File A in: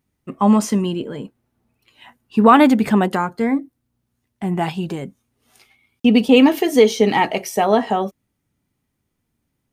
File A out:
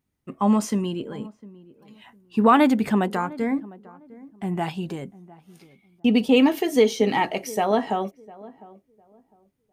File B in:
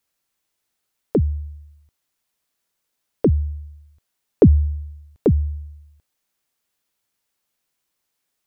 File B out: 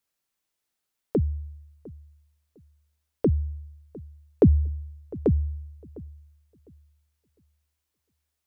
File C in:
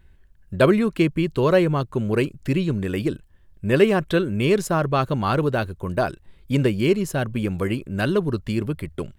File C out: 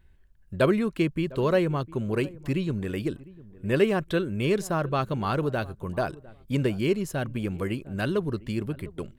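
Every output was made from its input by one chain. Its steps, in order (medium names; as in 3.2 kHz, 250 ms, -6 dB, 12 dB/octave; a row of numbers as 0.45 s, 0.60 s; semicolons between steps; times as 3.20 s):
filtered feedback delay 704 ms, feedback 24%, low-pass 940 Hz, level -19.5 dB; trim -5.5 dB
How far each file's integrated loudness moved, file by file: -5.5 LU, -5.5 LU, -5.5 LU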